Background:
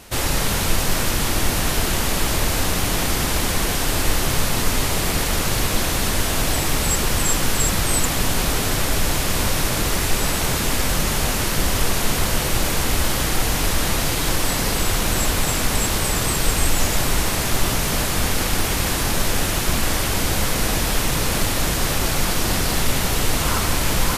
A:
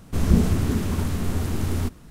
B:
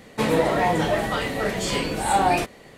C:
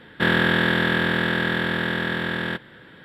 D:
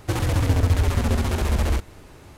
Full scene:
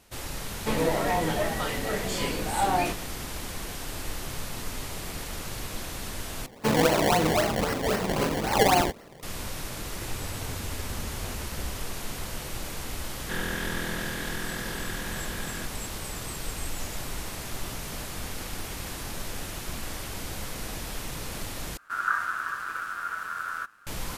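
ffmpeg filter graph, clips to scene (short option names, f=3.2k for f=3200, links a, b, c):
-filter_complex "[2:a]asplit=2[a][b];[0:a]volume=-15dB[c];[b]acrusher=samples=24:mix=1:aa=0.000001:lfo=1:lforange=24:lforate=3.8[d];[4:a]acompressor=threshold=-27dB:ratio=6:attack=3.2:release=140:knee=1:detection=peak[e];[1:a]aeval=exprs='val(0)*sin(2*PI*1400*n/s)':c=same[f];[c]asplit=3[g][h][i];[g]atrim=end=6.464[j];[d]atrim=end=2.77,asetpts=PTS-STARTPTS,volume=-1.5dB[k];[h]atrim=start=9.226:end=21.774[l];[f]atrim=end=2.1,asetpts=PTS-STARTPTS,volume=-7.5dB[m];[i]atrim=start=23.866[n];[a]atrim=end=2.77,asetpts=PTS-STARTPTS,volume=-5.5dB,afade=t=in:d=0.004:c=hsin,afade=t=out:st=2.766:d=0.004:c=hsin,adelay=480[o];[e]atrim=end=2.37,asetpts=PTS-STARTPTS,volume=-9dB,afade=t=in:d=0.004:c=hsin,afade=t=out:st=2.366:d=0.004:c=hsin,adelay=9930[p];[3:a]atrim=end=3.04,asetpts=PTS-STARTPTS,volume=-13.5dB,afade=t=in:d=0.004:c=hsin,afade=t=out:st=3.036:d=0.004:c=hsin,adelay=13090[q];[j][k]acrossfade=d=0.004:c1=hsin:c2=hsin[r];[r][l]acrossfade=d=0.004:c1=hsin:c2=hsin[s];[s][m]acrossfade=d=0.004:c1=hsin:c2=hsin[t];[t][n]acrossfade=d=0.004:c1=hsin:c2=hsin[u];[u][o][p][q]amix=inputs=4:normalize=0"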